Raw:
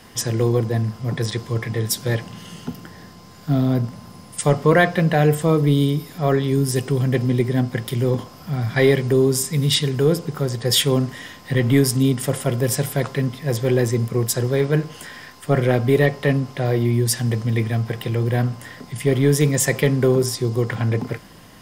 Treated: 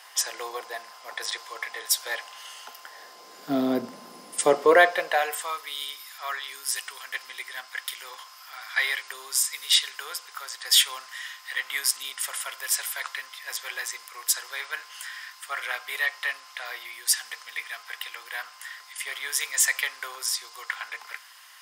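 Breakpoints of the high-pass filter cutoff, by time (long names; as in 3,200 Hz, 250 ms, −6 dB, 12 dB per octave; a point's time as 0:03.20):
high-pass filter 24 dB per octave
0:02.78 750 Hz
0:03.52 280 Hz
0:04.40 280 Hz
0:05.57 1,100 Hz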